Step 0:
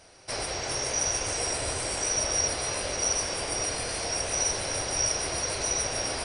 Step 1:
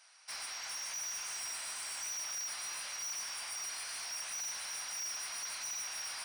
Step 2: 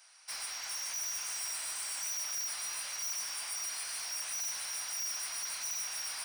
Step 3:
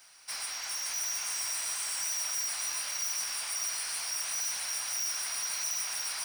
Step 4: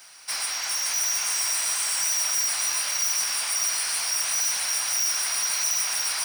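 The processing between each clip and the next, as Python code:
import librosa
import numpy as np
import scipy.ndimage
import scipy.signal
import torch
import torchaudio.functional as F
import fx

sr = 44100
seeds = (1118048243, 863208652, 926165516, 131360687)

y1 = scipy.signal.sosfilt(scipy.signal.butter(4, 1000.0, 'highpass', fs=sr, output='sos'), x)
y1 = 10.0 ** (-31.5 / 20.0) * np.tanh(y1 / 10.0 ** (-31.5 / 20.0))
y1 = F.gain(torch.from_numpy(y1), -5.5).numpy()
y2 = fx.high_shelf(y1, sr, hz=9100.0, db=9.5)
y3 = fx.dmg_noise_colour(y2, sr, seeds[0], colour='white', level_db=-71.0)
y3 = y3 + 10.0 ** (-6.0 / 20.0) * np.pad(y3, (int(566 * sr / 1000.0), 0))[:len(y3)]
y3 = F.gain(torch.from_numpy(y3), 3.0).numpy()
y4 = fx.highpass(y3, sr, hz=88.0, slope=6)
y4 = F.gain(torch.from_numpy(y4), 8.5).numpy()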